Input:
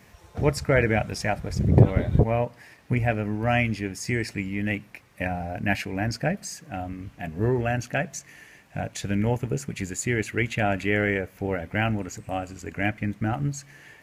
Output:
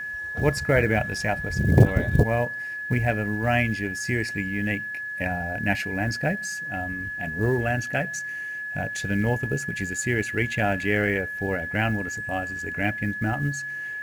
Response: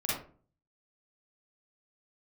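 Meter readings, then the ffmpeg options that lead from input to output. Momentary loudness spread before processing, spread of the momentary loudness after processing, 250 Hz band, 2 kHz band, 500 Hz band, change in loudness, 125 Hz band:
12 LU, 8 LU, 0.0 dB, +5.5 dB, 0.0 dB, +1.0 dB, 0.0 dB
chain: -af "aeval=exprs='val(0)+0.0316*sin(2*PI*1700*n/s)':c=same,acrusher=bits=8:mode=log:mix=0:aa=0.000001"

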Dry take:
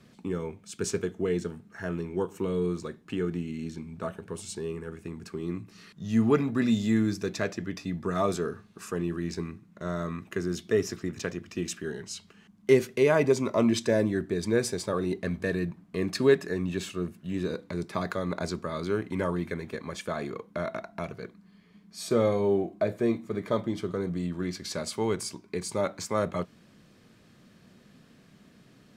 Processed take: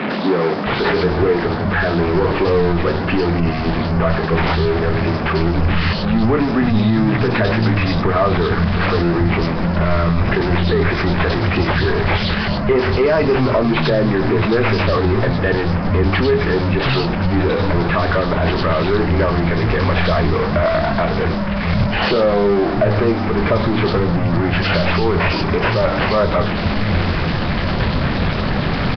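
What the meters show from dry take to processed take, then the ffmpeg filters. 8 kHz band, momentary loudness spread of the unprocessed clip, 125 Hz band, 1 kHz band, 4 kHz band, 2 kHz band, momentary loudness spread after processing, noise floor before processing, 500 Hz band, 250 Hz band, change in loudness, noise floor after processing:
no reading, 14 LU, +18.0 dB, +18.0 dB, +16.5 dB, +18.0 dB, 3 LU, -58 dBFS, +11.5 dB, +12.0 dB, +13.0 dB, -20 dBFS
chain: -filter_complex "[0:a]aeval=exprs='val(0)+0.5*0.0668*sgn(val(0))':c=same,bandreject=f=60:t=h:w=6,bandreject=f=120:t=h:w=6,bandreject=f=180:t=h:w=6,bandreject=f=240:t=h:w=6,bandreject=f=300:t=h:w=6,bandreject=f=360:t=h:w=6,bandreject=f=420:t=h:w=6,bandreject=f=480:t=h:w=6,afftfilt=real='re*gte(hypot(re,im),0.0141)':imag='im*gte(hypot(re,im),0.0141)':win_size=1024:overlap=0.75,asubboost=boost=3:cutoff=130,acrusher=samples=6:mix=1:aa=0.000001,volume=5.96,asoftclip=hard,volume=0.168,asplit=2[s0][s1];[s1]adelay=24,volume=0.316[s2];[s0][s2]amix=inputs=2:normalize=0,acrossover=split=180|3300[s3][s4][s5];[s5]adelay=100[s6];[s3]adelay=660[s7];[s7][s4][s6]amix=inputs=3:normalize=0,alimiter=level_in=7.08:limit=0.891:release=50:level=0:latency=1,volume=0.562" -ar 11025 -c:a nellymoser

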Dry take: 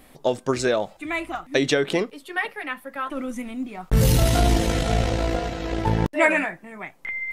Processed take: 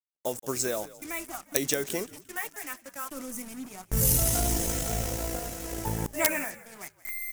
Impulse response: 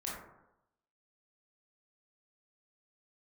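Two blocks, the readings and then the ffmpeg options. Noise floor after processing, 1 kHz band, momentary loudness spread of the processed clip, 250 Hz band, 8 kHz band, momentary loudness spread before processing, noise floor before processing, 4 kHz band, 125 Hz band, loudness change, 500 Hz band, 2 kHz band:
-62 dBFS, -10.0 dB, 14 LU, -10.0 dB, +5.5 dB, 12 LU, -53 dBFS, -7.0 dB, -10.0 dB, -5.5 dB, -10.0 dB, -10.0 dB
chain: -filter_complex "[0:a]acrusher=bits=5:mix=0:aa=0.5,agate=range=0.00501:threshold=0.00891:ratio=16:detection=peak,asplit=4[s0][s1][s2][s3];[s1]adelay=175,afreqshift=-60,volume=0.119[s4];[s2]adelay=350,afreqshift=-120,volume=0.0452[s5];[s3]adelay=525,afreqshift=-180,volume=0.0172[s6];[s0][s4][s5][s6]amix=inputs=4:normalize=0,aeval=exprs='(mod(2.11*val(0)+1,2)-1)/2.11':c=same,aexciter=amount=4.8:drive=7:freq=5600,volume=0.316"

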